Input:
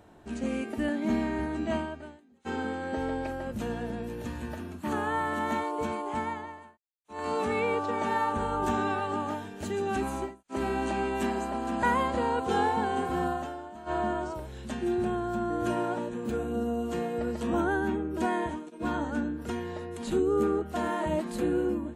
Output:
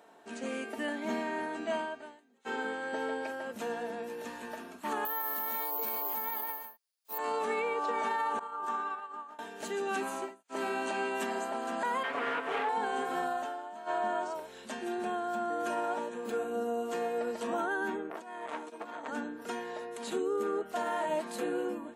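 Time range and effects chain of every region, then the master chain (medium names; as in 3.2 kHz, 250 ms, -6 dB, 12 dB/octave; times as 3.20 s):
5.05–7.18 s: peaking EQ 4.8 kHz +13 dB 0.56 oct + careless resampling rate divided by 3×, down none, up zero stuff
8.39–9.39 s: expander -20 dBFS + peaking EQ 1.2 kHz +10.5 dB 0.69 oct
12.03–12.69 s: comb filter that takes the minimum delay 7 ms + resonant high shelf 3.6 kHz -8.5 dB, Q 1.5 + loudspeaker Doppler distortion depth 0.15 ms
18.10–19.08 s: compressor with a negative ratio -34 dBFS, ratio -0.5 + transformer saturation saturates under 1.3 kHz
whole clip: high-pass 440 Hz 12 dB/octave; comb 4.4 ms, depth 34%; peak limiter -24 dBFS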